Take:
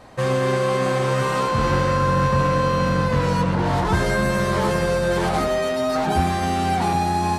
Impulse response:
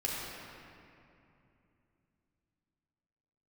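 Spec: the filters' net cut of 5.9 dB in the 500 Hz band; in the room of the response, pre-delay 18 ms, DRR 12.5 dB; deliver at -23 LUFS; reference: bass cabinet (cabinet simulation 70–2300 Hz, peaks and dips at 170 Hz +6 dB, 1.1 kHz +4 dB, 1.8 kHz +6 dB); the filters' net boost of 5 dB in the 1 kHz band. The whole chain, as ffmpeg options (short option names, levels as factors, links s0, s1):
-filter_complex "[0:a]equalizer=f=500:t=o:g=-8.5,equalizer=f=1000:t=o:g=5,asplit=2[s0][s1];[1:a]atrim=start_sample=2205,adelay=18[s2];[s1][s2]afir=irnorm=-1:irlink=0,volume=0.126[s3];[s0][s3]amix=inputs=2:normalize=0,highpass=f=70:w=0.5412,highpass=f=70:w=1.3066,equalizer=f=170:t=q:w=4:g=6,equalizer=f=1100:t=q:w=4:g=4,equalizer=f=1800:t=q:w=4:g=6,lowpass=f=2300:w=0.5412,lowpass=f=2300:w=1.3066,volume=0.596"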